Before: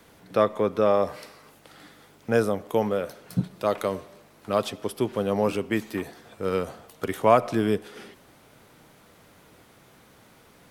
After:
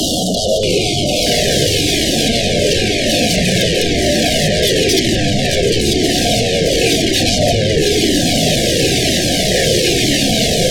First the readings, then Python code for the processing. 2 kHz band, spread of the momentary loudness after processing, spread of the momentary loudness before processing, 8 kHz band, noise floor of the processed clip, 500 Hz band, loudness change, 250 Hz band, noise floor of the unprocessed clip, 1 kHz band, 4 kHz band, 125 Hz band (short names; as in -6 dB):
+18.5 dB, 2 LU, 14 LU, +31.0 dB, -16 dBFS, +10.5 dB, +13.0 dB, +14.0 dB, -55 dBFS, +5.5 dB, +30.5 dB, +17.5 dB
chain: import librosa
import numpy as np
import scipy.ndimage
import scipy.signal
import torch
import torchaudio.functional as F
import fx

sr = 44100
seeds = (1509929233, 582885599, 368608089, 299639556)

p1 = fx.delta_mod(x, sr, bps=32000, step_db=-28.0)
p2 = scipy.signal.sosfilt(scipy.signal.butter(2, 130.0, 'highpass', fs=sr, output='sos'), p1)
p3 = fx.over_compress(p2, sr, threshold_db=-35.0, ratio=-1.0)
p4 = p2 + F.gain(torch.from_numpy(p3), 0.0).numpy()
p5 = fx.fold_sine(p4, sr, drive_db=19, ceiling_db=-6.0)
p6 = fx.brickwall_bandstop(p5, sr, low_hz=760.0, high_hz=2800.0)
p7 = fx.echo_pitch(p6, sr, ms=632, semitones=-5, count=2, db_per_echo=-3.0)
p8 = fx.comb_cascade(p7, sr, direction='falling', hz=0.99)
y = F.gain(torch.from_numpy(p8), -1.0).numpy()